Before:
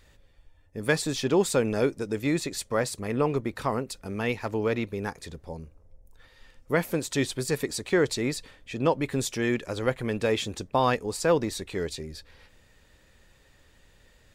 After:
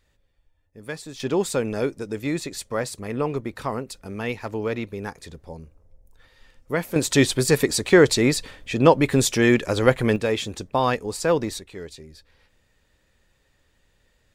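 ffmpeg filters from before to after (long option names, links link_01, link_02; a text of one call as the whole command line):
ffmpeg -i in.wav -af "asetnsamples=nb_out_samples=441:pad=0,asendcmd='1.2 volume volume 0dB;6.96 volume volume 9dB;10.16 volume volume 2dB;11.59 volume volume -6dB',volume=-9dB" out.wav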